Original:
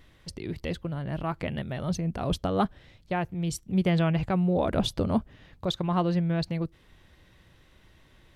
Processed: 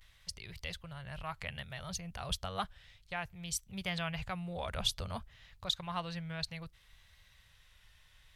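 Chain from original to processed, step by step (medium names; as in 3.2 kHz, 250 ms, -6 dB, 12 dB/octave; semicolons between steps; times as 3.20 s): vibrato 0.6 Hz 54 cents; amplifier tone stack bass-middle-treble 10-0-10; trim +1.5 dB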